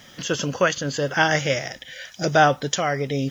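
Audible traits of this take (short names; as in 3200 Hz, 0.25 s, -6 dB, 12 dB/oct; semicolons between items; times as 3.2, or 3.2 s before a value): a quantiser's noise floor 10-bit, dither triangular; tremolo triangle 0.95 Hz, depth 35%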